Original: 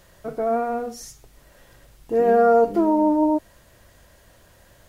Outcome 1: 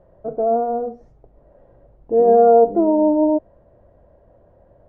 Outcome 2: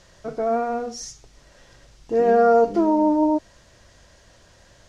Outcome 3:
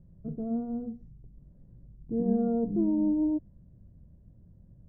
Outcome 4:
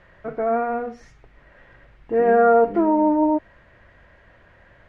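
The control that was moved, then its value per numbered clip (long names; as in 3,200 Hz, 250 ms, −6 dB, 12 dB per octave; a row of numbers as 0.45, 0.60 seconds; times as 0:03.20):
low-pass with resonance, frequency: 620, 5,900, 180, 2,000 Hertz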